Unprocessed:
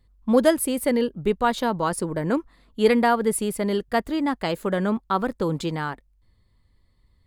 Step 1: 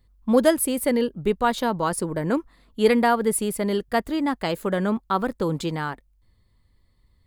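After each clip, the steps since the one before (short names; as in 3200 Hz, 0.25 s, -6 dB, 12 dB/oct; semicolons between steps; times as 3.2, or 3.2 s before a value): high shelf 12000 Hz +6 dB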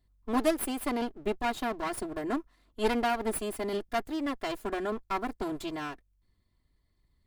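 minimum comb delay 2.9 ms; gain -8 dB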